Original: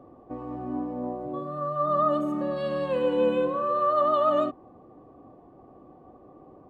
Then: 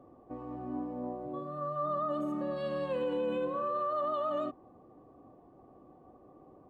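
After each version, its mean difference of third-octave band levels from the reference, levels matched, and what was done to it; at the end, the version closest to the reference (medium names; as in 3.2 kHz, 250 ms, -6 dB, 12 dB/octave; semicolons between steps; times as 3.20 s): 1.5 dB: peak limiter -19.5 dBFS, peak gain reduction 7 dB; trim -6 dB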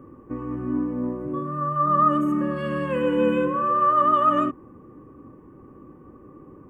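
3.0 dB: static phaser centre 1.7 kHz, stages 4; trim +8.5 dB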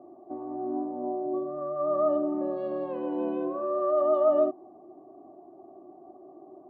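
5.5 dB: two resonant band-passes 490 Hz, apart 0.84 oct; trim +8 dB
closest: first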